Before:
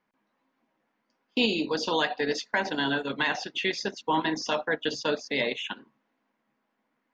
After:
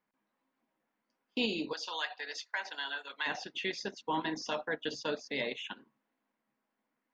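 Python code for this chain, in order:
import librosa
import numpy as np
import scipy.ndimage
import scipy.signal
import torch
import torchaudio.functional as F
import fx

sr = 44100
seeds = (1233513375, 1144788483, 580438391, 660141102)

y = fx.highpass(x, sr, hz=990.0, slope=12, at=(1.73, 3.26))
y = y * 10.0 ** (-7.5 / 20.0)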